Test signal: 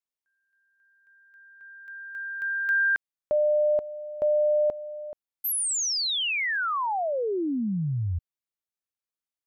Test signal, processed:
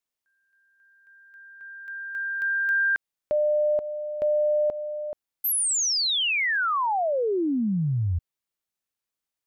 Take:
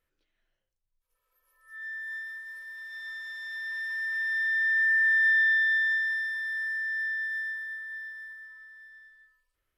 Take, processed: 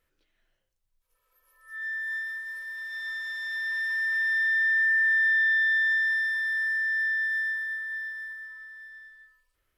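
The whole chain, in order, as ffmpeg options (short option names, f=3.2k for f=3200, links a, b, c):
-af "acompressor=threshold=-26dB:ratio=4:attack=0.28:release=98:knee=6:detection=rms,volume=5dB"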